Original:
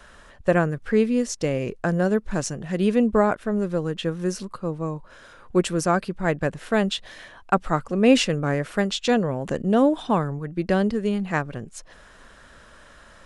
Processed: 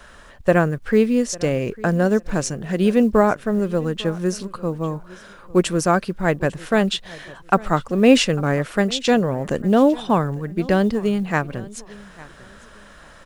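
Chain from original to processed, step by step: companded quantiser 8-bit; on a send: feedback echo 0.85 s, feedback 24%, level -21 dB; on the sum: gain +3.5 dB

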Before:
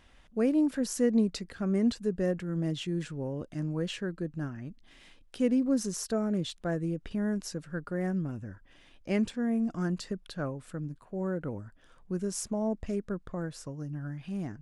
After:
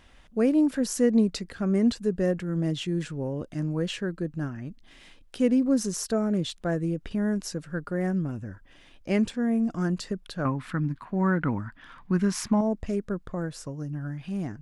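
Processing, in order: 10.45–12.61 ten-band EQ 125 Hz +4 dB, 250 Hz +8 dB, 500 Hz -8 dB, 1000 Hz +11 dB, 2000 Hz +11 dB, 4000 Hz +6 dB, 8000 Hz -6 dB; gain +4 dB

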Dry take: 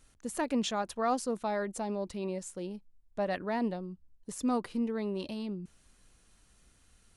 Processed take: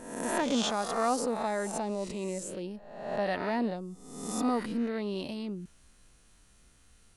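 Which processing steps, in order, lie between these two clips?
spectral swells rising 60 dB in 0.92 s

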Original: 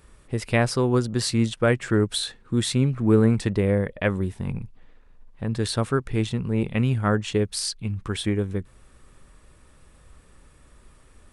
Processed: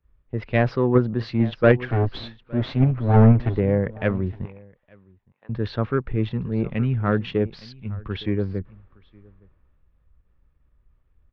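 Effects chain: 1.85–3.58 minimum comb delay 7.7 ms; 4.45–5.49 HPF 780 Hz 12 dB/oct; in parallel at 0 dB: level quantiser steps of 18 dB; on the sum: soft clip -11 dBFS, distortion -14 dB; Gaussian blur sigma 3.1 samples; on a send: echo 0.865 s -16.5 dB; on the sum: three-band expander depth 70%

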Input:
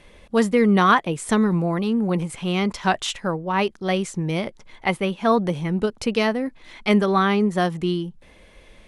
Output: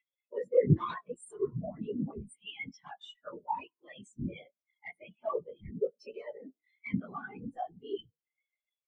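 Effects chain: short-time reversal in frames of 50 ms; tilt +4 dB/oct; notches 60/120/180/240/300/360 Hz; comb 6.5 ms, depth 33%; compressor 2:1, threshold -29 dBFS, peak gain reduction 9.5 dB; added harmonics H 2 -9 dB, 3 -6 dB, 7 -22 dB, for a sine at -12.5 dBFS; upward compressor, threshold -34 dBFS; whisperiser; frequency-shifting echo 98 ms, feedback 61%, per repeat +36 Hz, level -14 dB; on a send at -18.5 dB: reverb RT60 0.30 s, pre-delay 5 ms; on the sum: spectral expander 4:1; gain +4 dB

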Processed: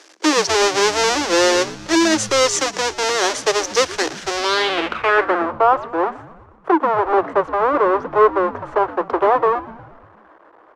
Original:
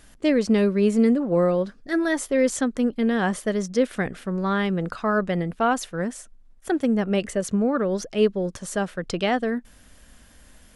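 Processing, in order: half-waves squared off; Chebyshev high-pass 310 Hz, order 6; in parallel at +1 dB: limiter -16 dBFS, peak gain reduction 12 dB; on the sum: frequency-shifting echo 0.119 s, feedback 61%, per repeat -110 Hz, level -17.5 dB; low-pass sweep 6000 Hz -> 1100 Hz, 4.32–5.52; gain -1 dB

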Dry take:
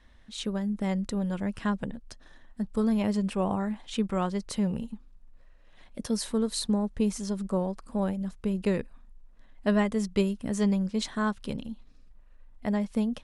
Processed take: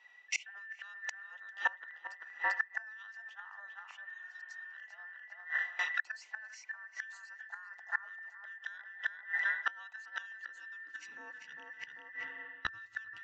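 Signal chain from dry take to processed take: band inversion scrambler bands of 2000 Hz; bell 2700 Hz +10 dB 0.49 oct; on a send: tape echo 0.394 s, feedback 42%, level -5 dB, low-pass 2100 Hz; on the sum: high-pass sweep 730 Hz -> 62 Hz, 10.07–12.52; gate with hold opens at -35 dBFS; high shelf 4300 Hz +5 dB; reverse; compressor 10:1, threshold -35 dBFS, peak gain reduction 20 dB; reverse; spectral repair 4.09–4.65, 400–3400 Hz after; spring tank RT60 1.8 s, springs 37/46 ms, chirp 70 ms, DRR 15 dB; flipped gate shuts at -31 dBFS, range -25 dB; downsampling 16000 Hz; gain +12.5 dB

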